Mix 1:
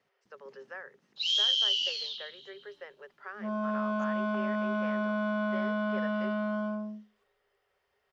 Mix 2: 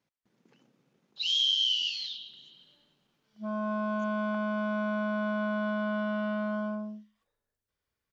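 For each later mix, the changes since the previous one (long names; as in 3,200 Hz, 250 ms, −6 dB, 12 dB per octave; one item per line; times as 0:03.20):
speech: muted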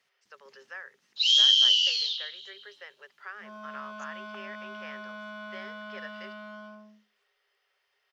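speech: unmuted
second sound −7.0 dB
master: add tilt shelving filter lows −9.5 dB, about 1,200 Hz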